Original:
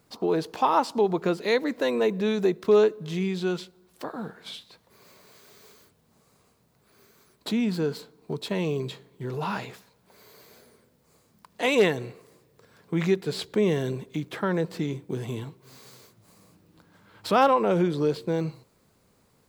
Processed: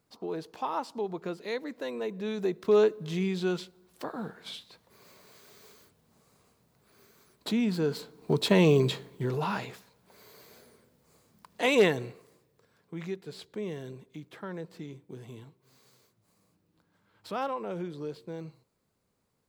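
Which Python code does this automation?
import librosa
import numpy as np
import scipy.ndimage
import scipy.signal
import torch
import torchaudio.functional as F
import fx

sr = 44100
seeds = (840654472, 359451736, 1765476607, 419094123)

y = fx.gain(x, sr, db=fx.line((2.07, -10.5), (2.89, -2.0), (7.81, -2.0), (8.39, 6.5), (9.07, 6.5), (9.48, -1.5), (11.97, -1.5), (12.95, -13.0)))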